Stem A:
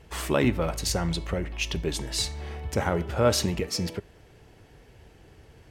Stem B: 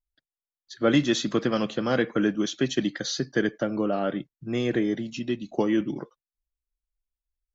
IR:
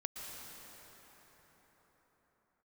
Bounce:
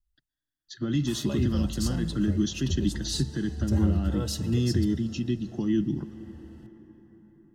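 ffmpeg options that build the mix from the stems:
-filter_complex "[0:a]equalizer=f=83:w=1.8:g=14.5,asplit=2[a][b];[b]adelay=4.2,afreqshift=-0.86[c];[a][c]amix=inputs=2:normalize=1,adelay=950,volume=-4.5dB,asplit=2[d][e];[e]volume=-13.5dB[f];[1:a]equalizer=f=260:t=o:w=0.94:g=-15,alimiter=limit=-22.5dB:level=0:latency=1:release=114,lowshelf=f=360:t=q:w=3:g=10.5,volume=-1.5dB,asplit=2[g][h];[h]volume=-13.5dB[i];[2:a]atrim=start_sample=2205[j];[f][i]amix=inputs=2:normalize=0[k];[k][j]afir=irnorm=-1:irlink=0[l];[d][g][l]amix=inputs=3:normalize=0,equalizer=f=360:t=o:w=0.29:g=3.5,acrossover=split=340|3000[m][n][o];[n]acompressor=threshold=-47dB:ratio=2[p];[m][p][o]amix=inputs=3:normalize=0,asuperstop=centerf=2300:order=8:qfactor=5.3"

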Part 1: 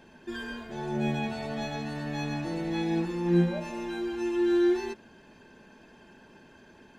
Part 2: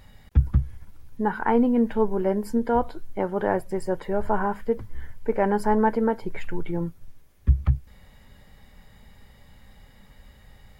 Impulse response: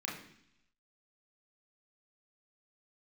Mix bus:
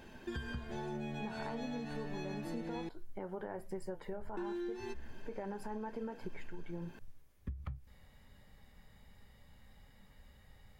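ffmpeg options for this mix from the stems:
-filter_complex "[0:a]acompressor=threshold=-31dB:ratio=2,volume=-1dB,asplit=3[a][b][c];[a]atrim=end=2.89,asetpts=PTS-STARTPTS,afade=t=out:st=2.886:d=0.004:c=hsin[d];[b]atrim=start=2.89:end=4.37,asetpts=PTS-STARTPTS,volume=0[e];[c]atrim=start=4.37,asetpts=PTS-STARTPTS,afade=t=in:d=0.004:c=hsin[f];[d][e][f]concat=n=3:v=0:a=1[g];[1:a]alimiter=limit=-17dB:level=0:latency=1:release=121,flanger=delay=9.3:depth=4.6:regen=-69:speed=1.3:shape=triangular,volume=-5dB[h];[g][h]amix=inputs=2:normalize=0,acompressor=threshold=-38dB:ratio=6"

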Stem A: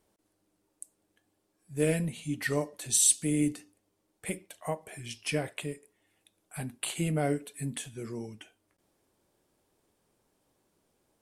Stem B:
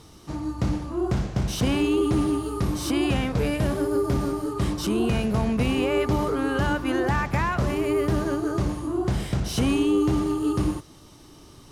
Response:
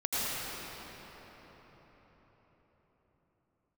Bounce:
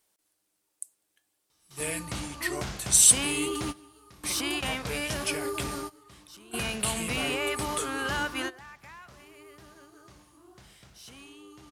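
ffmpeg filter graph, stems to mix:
-filter_complex "[0:a]highshelf=f=7.1k:g=4,volume=-5dB,asplit=2[a][b];[1:a]adelay=1500,volume=-5dB[c];[b]apad=whole_len=582606[d];[c][d]sidechaingate=range=-19dB:threshold=-57dB:ratio=16:detection=peak[e];[a][e]amix=inputs=2:normalize=0,tiltshelf=f=840:g=-8.5"

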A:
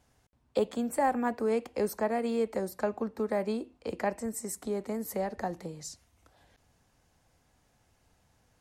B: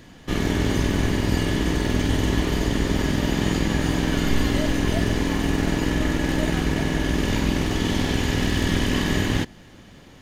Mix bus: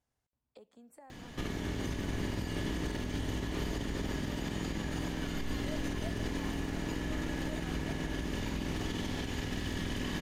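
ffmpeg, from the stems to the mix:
-filter_complex "[0:a]acompressor=threshold=-39dB:ratio=3,volume=-17.5dB[a];[1:a]acompressor=threshold=-25dB:ratio=6,adelay=1100,volume=-1.5dB[b];[a][b]amix=inputs=2:normalize=0,alimiter=level_in=1.5dB:limit=-24dB:level=0:latency=1:release=87,volume=-1.5dB"

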